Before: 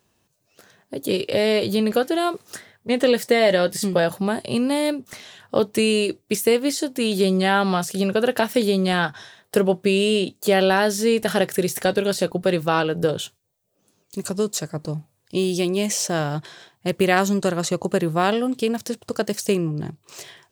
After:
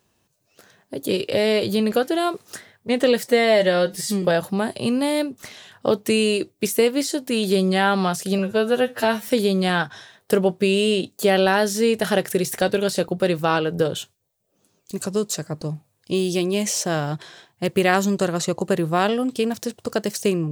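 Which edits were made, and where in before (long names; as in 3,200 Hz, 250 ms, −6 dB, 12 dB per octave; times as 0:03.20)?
0:03.28–0:03.91: time-stretch 1.5×
0:08.07–0:08.52: time-stretch 2×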